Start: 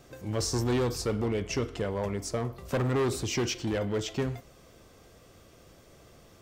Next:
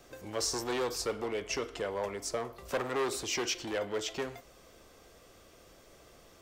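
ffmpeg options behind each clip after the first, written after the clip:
-filter_complex "[0:a]equalizer=f=120:t=o:w=2:g=-9,acrossover=split=340|1300|3500[s0][s1][s2][s3];[s0]acompressor=threshold=0.00501:ratio=6[s4];[s4][s1][s2][s3]amix=inputs=4:normalize=0"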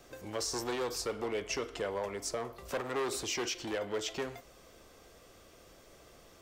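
-af "alimiter=level_in=1.12:limit=0.0631:level=0:latency=1:release=130,volume=0.891"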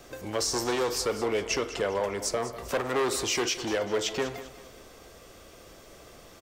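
-af "aecho=1:1:198|396|594|792:0.2|0.0738|0.0273|0.0101,volume=2.24"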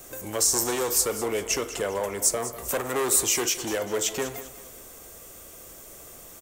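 -af "aexciter=amount=6.2:drive=3.6:freq=6700"

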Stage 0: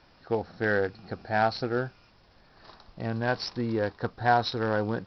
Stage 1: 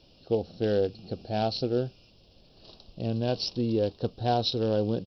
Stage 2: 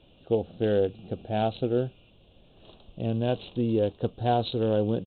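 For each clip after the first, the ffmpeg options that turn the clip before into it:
-af "firequalizer=gain_entry='entry(560,0);entry(900,-13);entry(1900,-22);entry(2800,4);entry(4600,1)':delay=0.05:min_phase=1,volume=1.26"
-af "aresample=8000,aresample=44100,volume=1.19"

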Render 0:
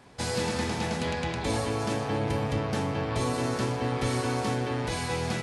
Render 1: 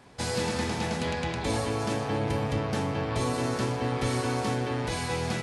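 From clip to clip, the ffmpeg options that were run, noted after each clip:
-af anull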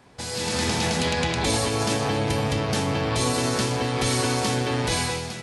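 -filter_complex "[0:a]acrossover=split=2800[s0][s1];[s0]alimiter=level_in=1.68:limit=0.0631:level=0:latency=1:release=177,volume=0.596[s2];[s2][s1]amix=inputs=2:normalize=0,dynaudnorm=f=130:g=7:m=3.98"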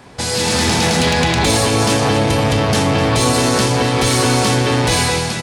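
-filter_complex "[0:a]asplit=2[s0][s1];[s1]alimiter=limit=0.106:level=0:latency=1,volume=0.708[s2];[s0][s2]amix=inputs=2:normalize=0,asoftclip=type=tanh:threshold=0.178,aecho=1:1:254:0.224,volume=2.37"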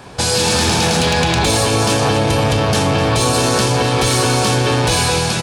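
-af "equalizer=f=250:t=o:w=0.43:g=-4.5,bandreject=f=2000:w=10,acompressor=threshold=0.141:ratio=6,volume=1.78"

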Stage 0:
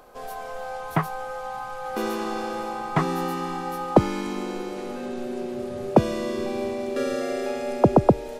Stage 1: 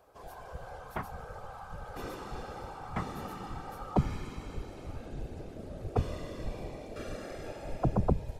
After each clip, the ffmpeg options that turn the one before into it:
-af "asubboost=boost=9.5:cutoff=92,afftfilt=real='hypot(re,im)*cos(2*PI*random(0))':imag='hypot(re,im)*sin(2*PI*random(1))':win_size=512:overlap=0.75,volume=0.473"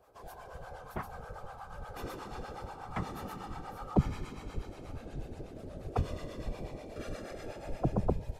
-filter_complex "[0:a]acrossover=split=590[s0][s1];[s0]aeval=exprs='val(0)*(1-0.7/2+0.7/2*cos(2*PI*8.3*n/s))':c=same[s2];[s1]aeval=exprs='val(0)*(1-0.7/2-0.7/2*cos(2*PI*8.3*n/s))':c=same[s3];[s2][s3]amix=inputs=2:normalize=0,volume=1.26"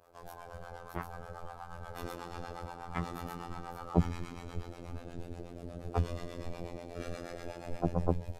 -af "afftfilt=real='hypot(re,im)*cos(PI*b)':imag='0':win_size=2048:overlap=0.75,volume=1.5"

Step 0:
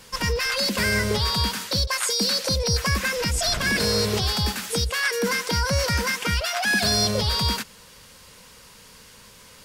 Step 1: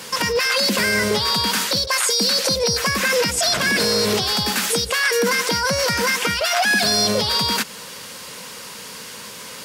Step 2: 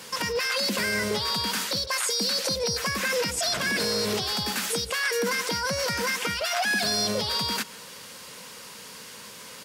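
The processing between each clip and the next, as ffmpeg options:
-filter_complex "[0:a]asplit=2[s0][s1];[s1]acompressor=threshold=0.0316:ratio=6,volume=1.41[s2];[s0][s2]amix=inputs=2:normalize=0,alimiter=limit=0.168:level=0:latency=1:release=14,highpass=180,volume=1.88"
-filter_complex "[0:a]asplit=2[s0][s1];[s1]adelay=140,highpass=300,lowpass=3400,asoftclip=type=hard:threshold=0.15,volume=0.1[s2];[s0][s2]amix=inputs=2:normalize=0,volume=0.422"

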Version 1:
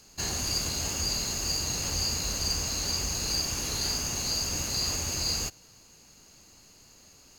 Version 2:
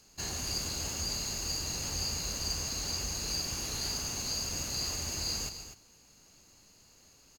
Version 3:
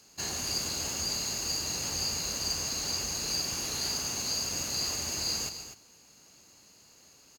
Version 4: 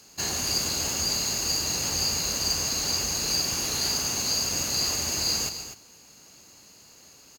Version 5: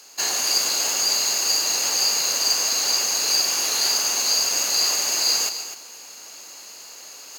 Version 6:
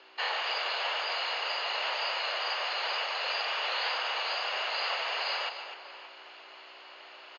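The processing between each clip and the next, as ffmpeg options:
-af "aecho=1:1:145.8|247.8:0.251|0.282,volume=0.531"
-af "highpass=f=160:p=1,volume=1.41"
-af "equalizer=f=15000:w=2.4:g=5,volume=1.88"
-af "highpass=520,areverse,acompressor=mode=upward:threshold=0.0112:ratio=2.5,areverse,volume=2"
-filter_complex "[0:a]asplit=2[s0][s1];[s1]adelay=583.1,volume=0.2,highshelf=f=4000:g=-13.1[s2];[s0][s2]amix=inputs=2:normalize=0,aeval=exprs='val(0)+0.01*(sin(2*PI*60*n/s)+sin(2*PI*2*60*n/s)/2+sin(2*PI*3*60*n/s)/3+sin(2*PI*4*60*n/s)/4+sin(2*PI*5*60*n/s)/5)':c=same,highpass=f=410:t=q:w=0.5412,highpass=f=410:t=q:w=1.307,lowpass=f=3400:t=q:w=0.5176,lowpass=f=3400:t=q:w=0.7071,lowpass=f=3400:t=q:w=1.932,afreqshift=86"

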